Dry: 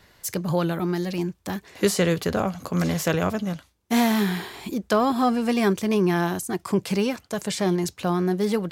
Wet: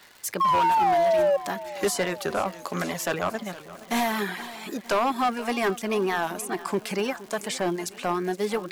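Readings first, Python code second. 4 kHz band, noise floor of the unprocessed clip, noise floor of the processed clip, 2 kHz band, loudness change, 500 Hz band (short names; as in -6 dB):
-2.0 dB, -61 dBFS, -46 dBFS, +0.5 dB, -1.5 dB, -0.5 dB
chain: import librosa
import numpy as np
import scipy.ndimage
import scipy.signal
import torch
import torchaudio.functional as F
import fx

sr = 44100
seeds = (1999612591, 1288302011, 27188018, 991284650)

y = fx.weighting(x, sr, curve='A')
y = fx.dereverb_blind(y, sr, rt60_s=0.65)
y = fx.notch(y, sr, hz=500.0, q=12.0)
y = fx.dynamic_eq(y, sr, hz=4400.0, q=0.79, threshold_db=-46.0, ratio=4.0, max_db=-7)
y = fx.spec_paint(y, sr, seeds[0], shape='fall', start_s=0.4, length_s=0.97, low_hz=550.0, high_hz=1100.0, level_db=-23.0)
y = np.clip(10.0 ** (21.5 / 20.0) * y, -1.0, 1.0) / 10.0 ** (21.5 / 20.0)
y = fx.dmg_crackle(y, sr, seeds[1], per_s=260.0, level_db=-41.0)
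y = fx.echo_feedback(y, sr, ms=469, feedback_pct=59, wet_db=-17)
y = fx.record_warp(y, sr, rpm=45.0, depth_cents=100.0)
y = y * 10.0 ** (3.5 / 20.0)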